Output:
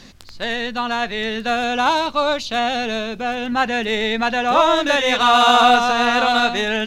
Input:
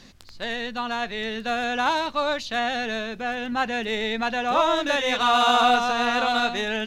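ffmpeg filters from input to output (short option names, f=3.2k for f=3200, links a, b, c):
-filter_complex "[0:a]asettb=1/sr,asplit=3[a][b][c];[a]atrim=end=1.564[d];[b]atrim=start=1.56:end=3.47,asetpts=PTS-STARTPTS,afade=t=in:d=0.004:c=qsin,afade=t=out:st=1.906:d=0.004:c=qsin,equalizer=f=1.8k:t=o:w=0.25:g=-9[e];[c]atrim=start=3.466[f];[d][e]acrossfade=d=0.004:c1=hsin:c2=qsin[g];[g][f]acrossfade=d=0.004:c1=qsin:c2=hsin,volume=6dB"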